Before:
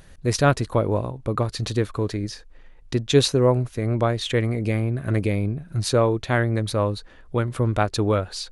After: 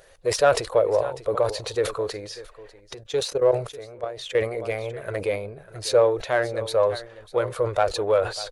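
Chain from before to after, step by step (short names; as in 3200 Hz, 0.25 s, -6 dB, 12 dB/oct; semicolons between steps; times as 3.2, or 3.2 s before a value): bin magnitudes rounded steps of 15 dB; echo 0.596 s -18 dB; in parallel at -6.5 dB: soft clip -20.5 dBFS, distortion -9 dB; 2.94–4.35 on the sum: level quantiser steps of 16 dB; resonant low shelf 350 Hz -12 dB, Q 3; sustainer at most 120 dB/s; gain -4 dB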